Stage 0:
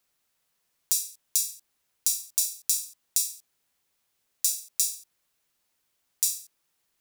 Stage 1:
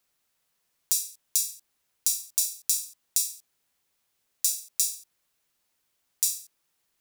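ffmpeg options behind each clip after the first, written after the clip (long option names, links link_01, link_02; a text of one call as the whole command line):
ffmpeg -i in.wav -af anull out.wav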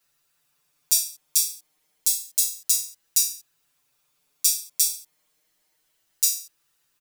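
ffmpeg -i in.wav -filter_complex "[0:a]aecho=1:1:6.6:0.98,asplit=2[link_01][link_02];[link_02]adelay=5.5,afreqshift=0.3[link_03];[link_01][link_03]amix=inputs=2:normalize=1,volume=5dB" out.wav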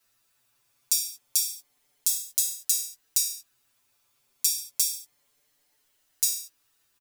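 ffmpeg -i in.wav -filter_complex "[0:a]acompressor=threshold=-20dB:ratio=6,afreqshift=-30,asplit=2[link_01][link_02];[link_02]adelay=16,volume=-11dB[link_03];[link_01][link_03]amix=inputs=2:normalize=0" out.wav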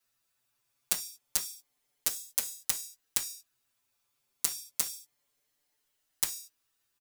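ffmpeg -i in.wav -af "aeval=exprs='0.794*(cos(1*acos(clip(val(0)/0.794,-1,1)))-cos(1*PI/2))+0.158*(cos(7*acos(clip(val(0)/0.794,-1,1)))-cos(7*PI/2))':channel_layout=same" out.wav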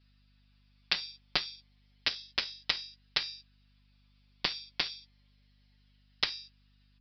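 ffmpeg -i in.wav -filter_complex "[0:a]aeval=exprs='val(0)+0.000562*(sin(2*PI*50*n/s)+sin(2*PI*2*50*n/s)/2+sin(2*PI*3*50*n/s)/3+sin(2*PI*4*50*n/s)/4+sin(2*PI*5*50*n/s)/5)':channel_layout=same,acrossover=split=1900[link_01][link_02];[link_02]aeval=exprs='0.891*sin(PI/2*2.24*val(0)/0.891)':channel_layout=same[link_03];[link_01][link_03]amix=inputs=2:normalize=0,aresample=11025,aresample=44100" out.wav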